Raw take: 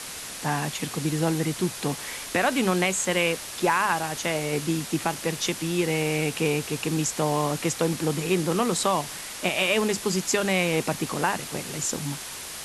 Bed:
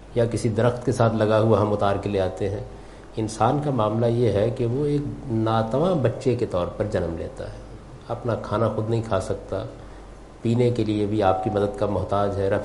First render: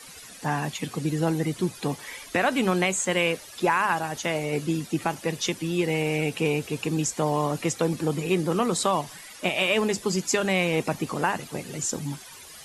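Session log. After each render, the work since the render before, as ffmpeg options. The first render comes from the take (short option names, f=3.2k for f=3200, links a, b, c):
-af "afftdn=nr=13:nf=-37"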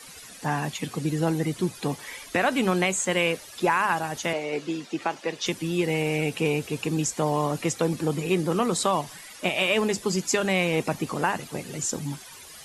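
-filter_complex "[0:a]asettb=1/sr,asplit=3[a][b][c];[a]atrim=end=4.334[d];[b]atrim=start=4.33:end=5.46,asetpts=PTS-STARTPTS,afade=t=in:d=0.004:c=qsin,afade=t=out:st=1.126:d=0.004:c=qsin,acrossover=split=260 6700:gain=0.158 1 0.126[e][f][g];[e][f][g]amix=inputs=3:normalize=0[h];[c]atrim=start=5.456[i];[d][h]acrossfade=d=0.004:c1=hsin:c2=qsin[j];[j][i]acrossfade=d=0.004:c1=qsin:c2=hsin"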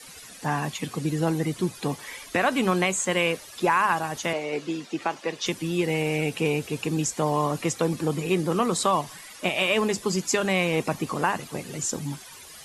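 -af "adynamicequalizer=threshold=0.00794:dfrequency=1100:dqfactor=7.1:tfrequency=1100:tqfactor=7.1:attack=5:release=100:ratio=0.375:range=2.5:mode=boostabove:tftype=bell"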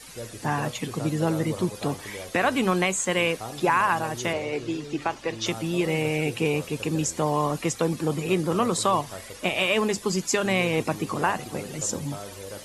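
-filter_complex "[1:a]volume=-17dB[a];[0:a][a]amix=inputs=2:normalize=0"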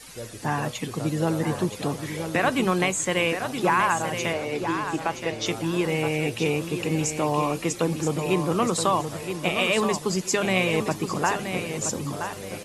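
-af "aecho=1:1:973|1946|2919:0.398|0.0995|0.0249"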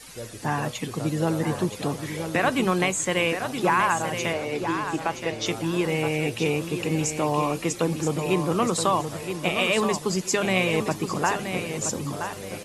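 -af anull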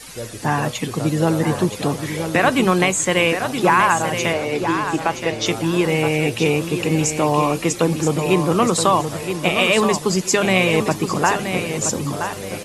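-af "volume=6.5dB,alimiter=limit=-2dB:level=0:latency=1"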